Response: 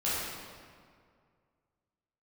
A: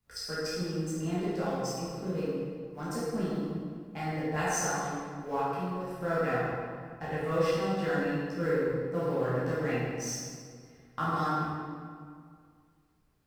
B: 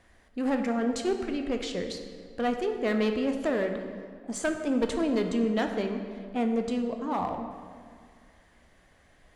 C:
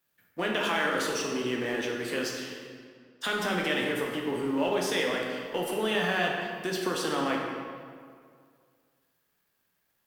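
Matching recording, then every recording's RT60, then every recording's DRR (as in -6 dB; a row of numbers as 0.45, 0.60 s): A; 2.1, 2.1, 2.1 s; -10.0, 5.0, -1.5 dB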